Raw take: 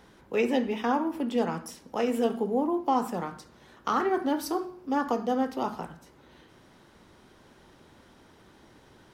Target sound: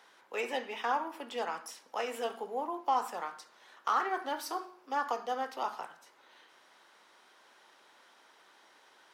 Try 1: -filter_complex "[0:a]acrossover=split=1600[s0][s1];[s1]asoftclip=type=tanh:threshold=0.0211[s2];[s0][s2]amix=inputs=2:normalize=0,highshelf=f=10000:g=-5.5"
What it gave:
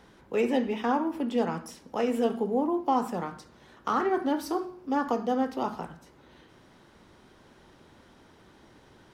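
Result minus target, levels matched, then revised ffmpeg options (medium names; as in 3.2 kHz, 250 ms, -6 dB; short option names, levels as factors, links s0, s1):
1 kHz band -4.0 dB
-filter_complex "[0:a]acrossover=split=1600[s0][s1];[s1]asoftclip=type=tanh:threshold=0.0211[s2];[s0][s2]amix=inputs=2:normalize=0,highpass=800,highshelf=f=10000:g=-5.5"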